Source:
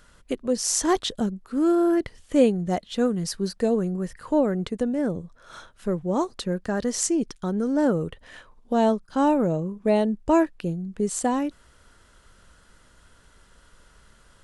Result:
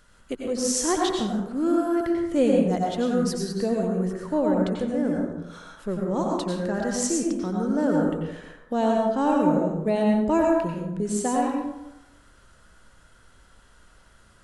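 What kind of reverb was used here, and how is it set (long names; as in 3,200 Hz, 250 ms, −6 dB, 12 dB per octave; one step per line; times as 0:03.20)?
dense smooth reverb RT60 0.96 s, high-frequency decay 0.5×, pre-delay 80 ms, DRR −1.5 dB
level −3.5 dB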